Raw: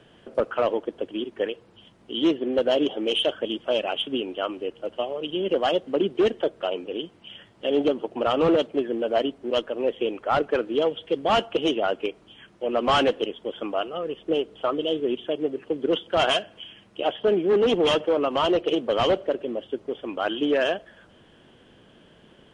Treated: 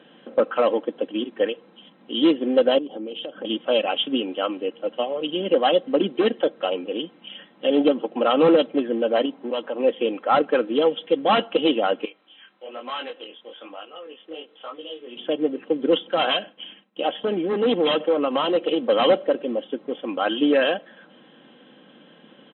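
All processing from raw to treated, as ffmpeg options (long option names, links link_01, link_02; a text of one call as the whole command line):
ffmpeg -i in.wav -filter_complex "[0:a]asettb=1/sr,asplit=3[link_01][link_02][link_03];[link_01]atrim=end=2.784[link_04];[link_02]atrim=start=2.78:end=3.45,asetpts=PTS-STARTPTS,afade=type=in:duration=0.004:curve=qsin,afade=type=out:start_time=0.666:duration=0.004:curve=qsin,tiltshelf=frequency=820:gain=6.5,acompressor=threshold=-32dB:ratio=16:attack=3.2:release=140:knee=1:detection=peak[link_05];[link_03]atrim=start=3.446[link_06];[link_04][link_05]acrossfade=duration=0.004:curve1=hsin:curve2=qsin[link_07];[link_07][link_06]acrossfade=duration=0.004:curve1=qsin:curve2=hsin,asettb=1/sr,asplit=3[link_08][link_09][link_10];[link_08]atrim=end=9.254[link_11];[link_09]atrim=start=9.25:end=9.8,asetpts=PTS-STARTPTS,afade=type=in:duration=0.004:curve=qsin,afade=type=out:start_time=0.546:duration=0.004:curve=qsin,equalizer=frequency=910:width_type=o:width=0.4:gain=8.5,acompressor=threshold=-28dB:ratio=2.5:attack=3.2:release=140:knee=1:detection=peak[link_12];[link_10]atrim=start=9.796[link_13];[link_11][link_12]acrossfade=duration=0.004:curve1=hsin:curve2=qsin[link_14];[link_14][link_13]acrossfade=duration=0.004:curve1=qsin:curve2=hsin,asettb=1/sr,asplit=3[link_15][link_16][link_17];[link_15]atrim=end=12.054[link_18];[link_16]atrim=start=12.05:end=15.16,asetpts=PTS-STARTPTS,afade=type=in:duration=0.004:curve=qsin,afade=type=out:start_time=3.106:duration=0.004:curve=qsin,highpass=frequency=1100:poles=1,acompressor=threshold=-41dB:ratio=1.5:attack=3.2:release=140:knee=1:detection=peak,flanger=delay=19:depth=6.4:speed=1.1[link_19];[link_17]atrim=start=15.156[link_20];[link_18][link_19]acrossfade=duration=0.004:curve1=hsin:curve2=qsin[link_21];[link_21][link_20]acrossfade=duration=0.004:curve1=qsin:curve2=hsin,asettb=1/sr,asplit=3[link_22][link_23][link_24];[link_22]atrim=end=16.134[link_25];[link_23]atrim=start=16.13:end=18.87,asetpts=PTS-STARTPTS,afade=type=in:duration=0.004:curve=qsin,afade=type=out:start_time=2.736:duration=0.004:curve=qsin,agate=range=-33dB:threshold=-46dB:ratio=3:release=100:detection=peak,acompressor=threshold=-25dB:ratio=1.5:attack=3.2:release=140:knee=1:detection=peak[link_26];[link_24]atrim=start=18.866[link_27];[link_25][link_26]acrossfade=duration=0.004:curve1=hsin:curve2=qsin[link_28];[link_28][link_27]acrossfade=duration=0.004:curve1=qsin:curve2=hsin,afftfilt=real='re*between(b*sr/4096,130,4100)':imag='im*between(b*sr/4096,130,4100)':win_size=4096:overlap=0.75,aecho=1:1:3.8:0.51,volume=2.5dB" out.wav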